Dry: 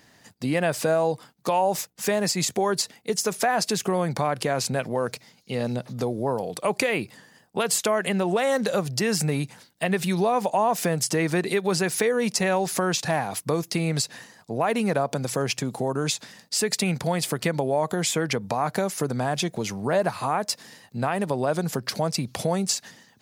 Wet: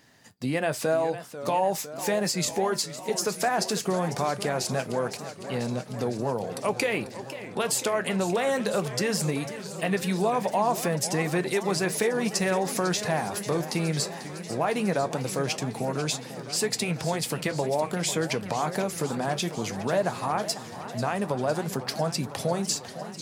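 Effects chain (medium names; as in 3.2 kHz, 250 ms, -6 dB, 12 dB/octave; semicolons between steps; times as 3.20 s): flange 0.18 Hz, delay 7.4 ms, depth 5.1 ms, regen -66%; modulated delay 500 ms, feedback 74%, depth 214 cents, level -13 dB; trim +1.5 dB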